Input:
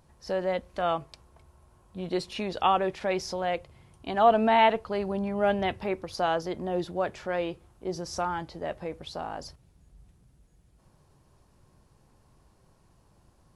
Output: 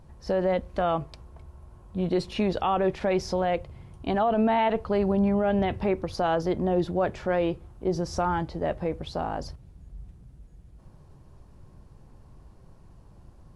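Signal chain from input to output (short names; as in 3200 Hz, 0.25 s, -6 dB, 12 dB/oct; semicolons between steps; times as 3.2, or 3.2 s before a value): tilt -2 dB/oct; limiter -19.5 dBFS, peak gain reduction 11.5 dB; gain +4 dB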